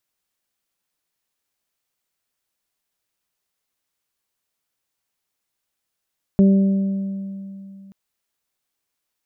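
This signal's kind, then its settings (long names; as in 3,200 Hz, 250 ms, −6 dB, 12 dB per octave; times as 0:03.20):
harmonic partials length 1.53 s, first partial 195 Hz, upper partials −10.5/−17 dB, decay 2.88 s, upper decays 1.38/2.22 s, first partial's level −9 dB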